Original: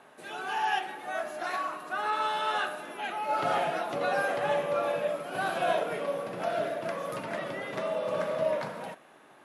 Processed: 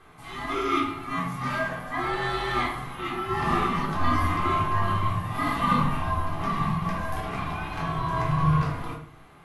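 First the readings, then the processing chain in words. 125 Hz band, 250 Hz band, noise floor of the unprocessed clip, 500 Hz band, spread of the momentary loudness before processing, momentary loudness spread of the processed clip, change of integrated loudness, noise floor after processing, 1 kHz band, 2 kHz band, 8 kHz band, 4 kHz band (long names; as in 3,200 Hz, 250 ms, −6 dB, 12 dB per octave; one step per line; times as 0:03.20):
+20.5 dB, +12.0 dB, −56 dBFS, −4.5 dB, 7 LU, 8 LU, +4.0 dB, −49 dBFS, +4.5 dB, +2.0 dB, +1.5 dB, +2.5 dB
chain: ring modulation 480 Hz
rectangular room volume 490 cubic metres, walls furnished, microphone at 3.7 metres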